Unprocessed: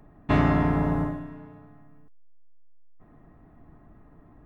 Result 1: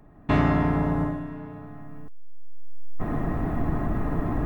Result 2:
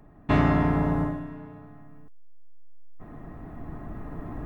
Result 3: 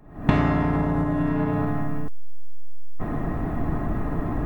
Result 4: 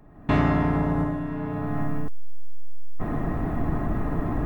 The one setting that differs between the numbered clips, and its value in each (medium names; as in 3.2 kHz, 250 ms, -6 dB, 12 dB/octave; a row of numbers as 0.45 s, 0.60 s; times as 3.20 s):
recorder AGC, rising by: 13 dB/s, 5 dB/s, 89 dB/s, 33 dB/s